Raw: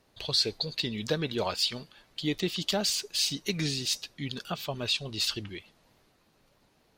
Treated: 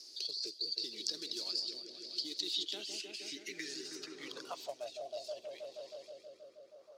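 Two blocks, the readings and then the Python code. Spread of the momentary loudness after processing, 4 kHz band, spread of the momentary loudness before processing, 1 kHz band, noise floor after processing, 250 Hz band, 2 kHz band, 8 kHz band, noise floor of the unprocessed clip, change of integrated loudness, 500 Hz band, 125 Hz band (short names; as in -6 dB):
14 LU, -8.5 dB, 10 LU, -12.0 dB, -61 dBFS, -16.5 dB, -12.0 dB, -11.5 dB, -67 dBFS, -10.0 dB, -10.0 dB, -33.5 dB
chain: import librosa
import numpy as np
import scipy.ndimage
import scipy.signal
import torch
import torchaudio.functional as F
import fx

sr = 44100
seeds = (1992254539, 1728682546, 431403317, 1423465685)

y = fx.spec_quant(x, sr, step_db=15)
y = fx.high_shelf(y, sr, hz=2600.0, db=11.0)
y = fx.over_compress(y, sr, threshold_db=-27.0, ratio=-1.0)
y = fx.filter_sweep_highpass(y, sr, from_hz=340.0, to_hz=1200.0, start_s=3.48, end_s=6.27, q=5.4)
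y = fx.quant_float(y, sr, bits=2)
y = fx.curve_eq(y, sr, hz=(120.0, 860.0, 3300.0, 5500.0), db=(0, -20, -25, -13))
y = fx.echo_opening(y, sr, ms=159, hz=750, octaves=1, feedback_pct=70, wet_db=-6)
y = fx.rotary(y, sr, hz=0.65)
y = fx.filter_sweep_bandpass(y, sr, from_hz=4700.0, to_hz=540.0, start_s=2.22, end_s=5.47, q=5.6)
y = fx.band_squash(y, sr, depth_pct=70)
y = y * 10.0 ** (17.5 / 20.0)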